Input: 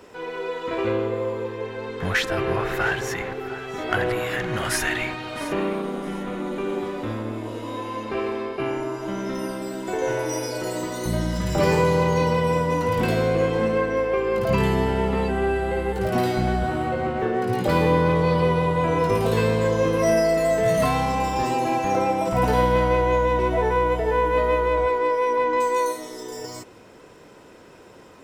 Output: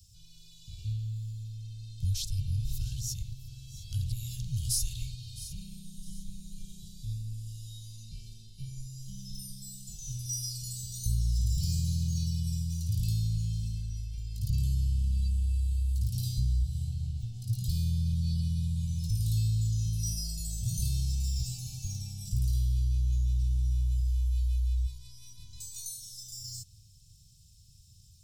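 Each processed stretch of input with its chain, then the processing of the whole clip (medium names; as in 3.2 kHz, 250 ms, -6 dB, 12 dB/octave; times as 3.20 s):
5.55–10.14 s: comb 5.6 ms, depth 59% + Shepard-style phaser rising 1.2 Hz
whole clip: inverse Chebyshev band-stop 280–2000 Hz, stop band 50 dB; bass shelf 99 Hz +7 dB; compression, threshold -24 dBFS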